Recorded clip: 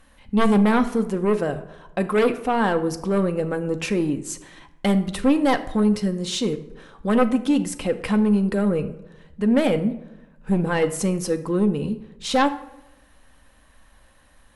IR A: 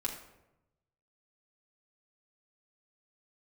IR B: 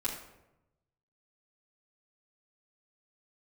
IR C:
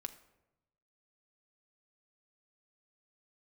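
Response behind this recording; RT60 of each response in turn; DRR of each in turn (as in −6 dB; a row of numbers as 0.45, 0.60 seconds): C; 0.90, 0.90, 0.95 seconds; −2.0, −6.5, 7.5 decibels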